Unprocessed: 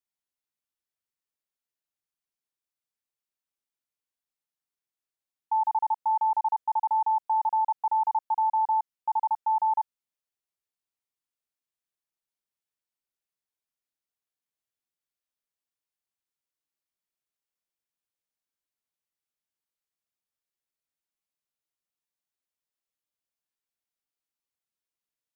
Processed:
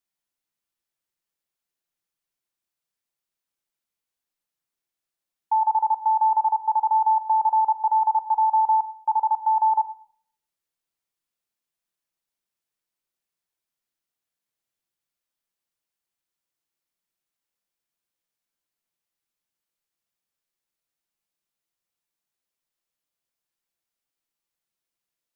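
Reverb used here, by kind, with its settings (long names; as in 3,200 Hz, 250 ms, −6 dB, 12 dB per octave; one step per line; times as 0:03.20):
rectangular room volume 960 cubic metres, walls furnished, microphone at 0.79 metres
level +4 dB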